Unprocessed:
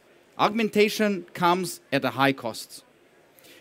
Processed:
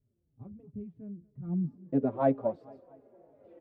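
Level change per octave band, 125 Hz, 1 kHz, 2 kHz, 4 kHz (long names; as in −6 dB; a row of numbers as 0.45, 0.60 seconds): −3.0 dB, −14.0 dB, −25.5 dB, below −40 dB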